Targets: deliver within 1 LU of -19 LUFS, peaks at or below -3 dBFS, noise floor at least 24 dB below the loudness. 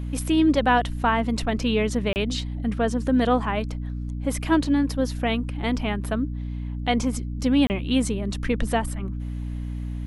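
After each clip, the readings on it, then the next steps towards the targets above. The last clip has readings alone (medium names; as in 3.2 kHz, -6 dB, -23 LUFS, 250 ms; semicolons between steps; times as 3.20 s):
dropouts 2; longest dropout 29 ms; hum 60 Hz; highest harmonic 300 Hz; hum level -28 dBFS; loudness -24.5 LUFS; peak level -7.5 dBFS; loudness target -19.0 LUFS
-> interpolate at 2.13/7.67 s, 29 ms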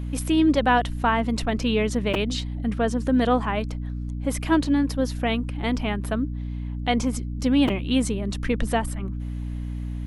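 dropouts 0; hum 60 Hz; highest harmonic 300 Hz; hum level -28 dBFS
-> de-hum 60 Hz, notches 5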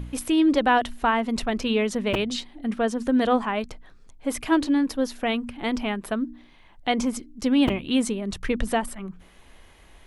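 hum not found; loudness -25.0 LUFS; peak level -7.5 dBFS; loudness target -19.0 LUFS
-> trim +6 dB; peak limiter -3 dBFS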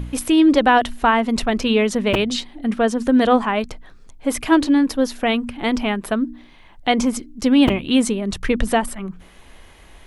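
loudness -19.0 LUFS; peak level -3.0 dBFS; noise floor -46 dBFS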